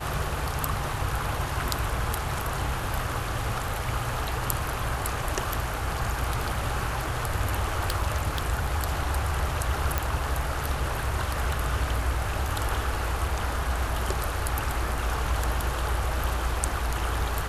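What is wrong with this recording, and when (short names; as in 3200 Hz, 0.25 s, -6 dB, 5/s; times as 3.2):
7.62–8.46 clipped -19 dBFS
9.98 pop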